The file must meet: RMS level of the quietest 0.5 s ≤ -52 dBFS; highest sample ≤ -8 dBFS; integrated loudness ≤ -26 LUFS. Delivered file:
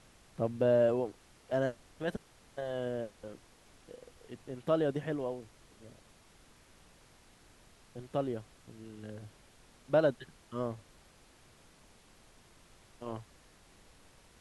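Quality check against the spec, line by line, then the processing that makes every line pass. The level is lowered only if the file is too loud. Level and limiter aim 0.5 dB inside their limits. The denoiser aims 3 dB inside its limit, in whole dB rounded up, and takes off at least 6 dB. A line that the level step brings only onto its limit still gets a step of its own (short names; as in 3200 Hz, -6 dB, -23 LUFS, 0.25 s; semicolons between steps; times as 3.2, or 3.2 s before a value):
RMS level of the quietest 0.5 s -61 dBFS: OK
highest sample -16.5 dBFS: OK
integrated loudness -34.5 LUFS: OK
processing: none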